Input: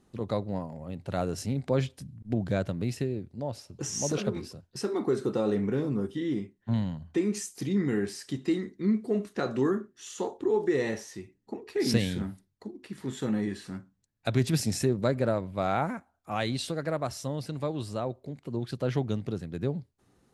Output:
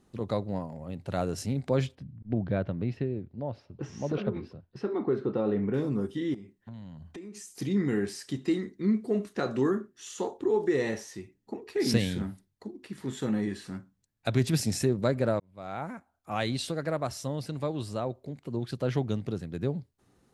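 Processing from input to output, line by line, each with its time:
0:01.95–0:05.74: high-frequency loss of the air 330 metres
0:06.34–0:07.59: downward compressor, threshold −41 dBFS
0:15.40–0:16.39: fade in

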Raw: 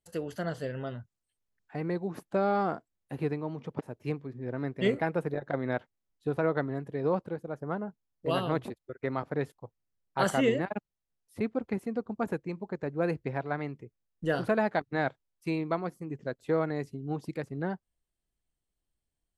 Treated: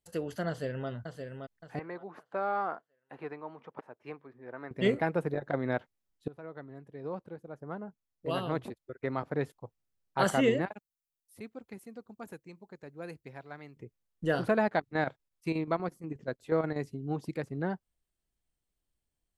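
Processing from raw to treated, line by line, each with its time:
0:00.48–0:00.89: delay throw 570 ms, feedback 35%, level −6.5 dB
0:01.79–0:04.71: resonant band-pass 1,200 Hz, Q 1
0:06.28–0:09.58: fade in, from −21 dB
0:10.71–0:13.77: first-order pre-emphasis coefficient 0.8
0:14.59–0:16.77: square-wave tremolo 8.3 Hz, depth 60%, duty 75%

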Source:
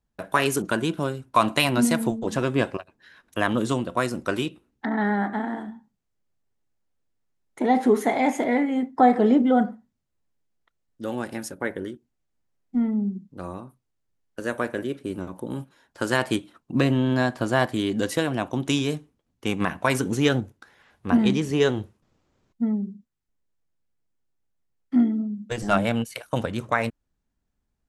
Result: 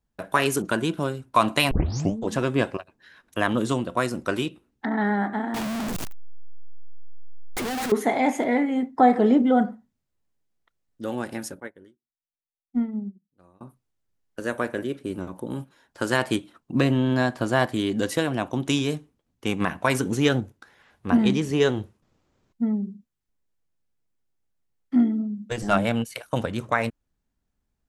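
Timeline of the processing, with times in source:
0:01.71: tape start 0.46 s
0:05.54–0:07.92: sign of each sample alone
0:11.60–0:13.61: expander for the loud parts 2.5 to 1, over −39 dBFS

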